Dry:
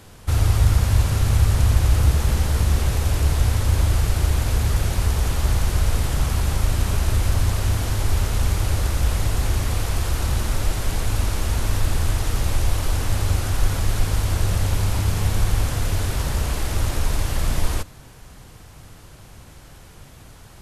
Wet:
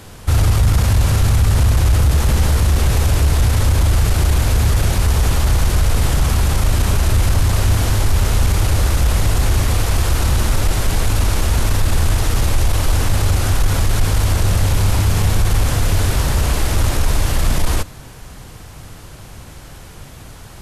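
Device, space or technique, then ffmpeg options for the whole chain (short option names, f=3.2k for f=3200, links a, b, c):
soft clipper into limiter: -af "asoftclip=type=tanh:threshold=-8dB,alimiter=limit=-14.5dB:level=0:latency=1:release=15,volume=7.5dB"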